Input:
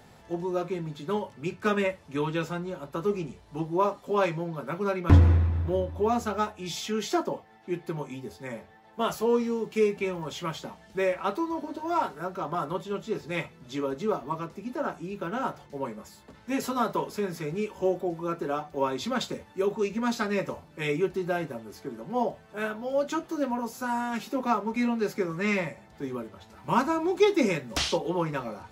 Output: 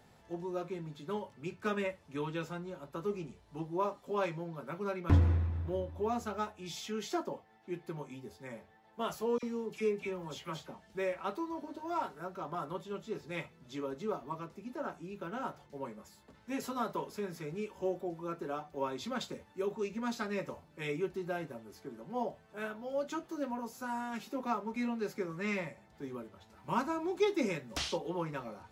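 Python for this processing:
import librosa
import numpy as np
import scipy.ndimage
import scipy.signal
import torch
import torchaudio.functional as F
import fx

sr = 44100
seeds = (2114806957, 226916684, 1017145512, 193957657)

y = fx.dispersion(x, sr, late='lows', ms=49.0, hz=1700.0, at=(9.38, 10.82))
y = F.gain(torch.from_numpy(y), -8.5).numpy()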